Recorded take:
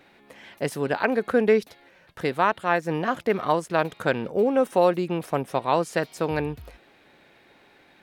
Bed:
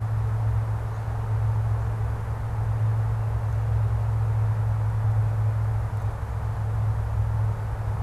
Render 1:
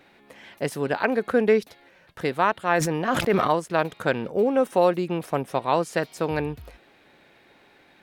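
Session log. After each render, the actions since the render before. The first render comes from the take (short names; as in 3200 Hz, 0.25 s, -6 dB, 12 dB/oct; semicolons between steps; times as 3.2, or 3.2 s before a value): 2.65–3.51 sustainer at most 32 dB/s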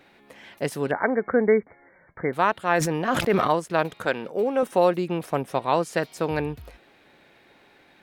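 0.91–2.33 brick-wall FIR low-pass 2300 Hz; 4.05–4.63 HPF 360 Hz 6 dB/oct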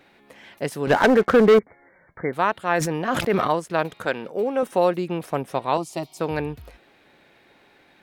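0.87–1.59 sample leveller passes 3; 5.77–6.2 fixed phaser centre 320 Hz, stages 8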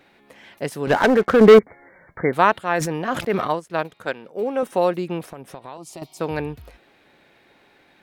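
1.41–2.59 gain +5.5 dB; 3.13–4.42 upward expander, over -33 dBFS; 5.26–6.02 compressor, threshold -33 dBFS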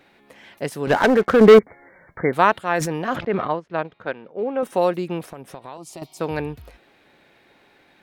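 3.16–4.63 air absorption 260 m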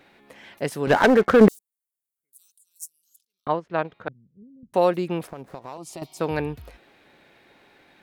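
1.48–3.47 inverse Chebyshev high-pass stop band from 2000 Hz, stop band 70 dB; 4.08–4.74 inverse Chebyshev low-pass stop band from 950 Hz, stop band 80 dB; 5.27–5.78 median filter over 15 samples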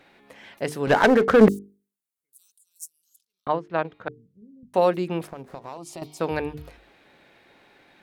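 high shelf 12000 Hz -4 dB; notches 50/100/150/200/250/300/350/400/450 Hz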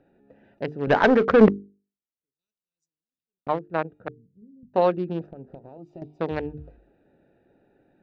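Wiener smoothing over 41 samples; Bessel low-pass 3800 Hz, order 8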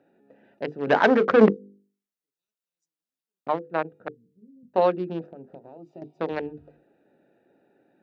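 HPF 190 Hz 12 dB/oct; notches 50/100/150/200/250/300/350/400/450/500 Hz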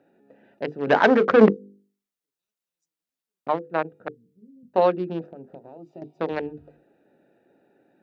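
gain +1.5 dB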